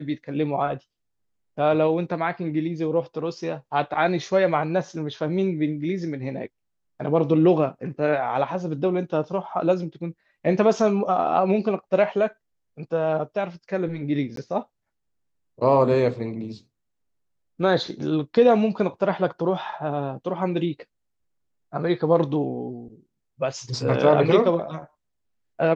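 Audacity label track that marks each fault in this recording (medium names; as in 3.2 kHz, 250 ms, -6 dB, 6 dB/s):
14.360000	14.370000	dropout 13 ms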